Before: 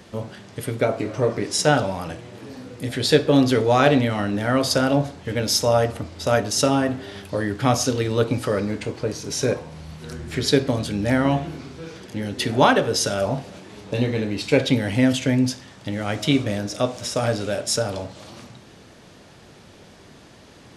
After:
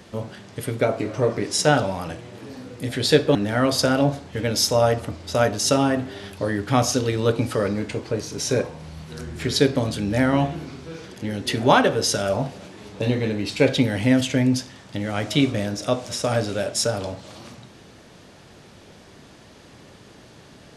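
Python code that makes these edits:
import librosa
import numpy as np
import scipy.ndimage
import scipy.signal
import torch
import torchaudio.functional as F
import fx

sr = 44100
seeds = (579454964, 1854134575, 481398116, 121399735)

y = fx.edit(x, sr, fx.cut(start_s=3.35, length_s=0.92), tone=tone)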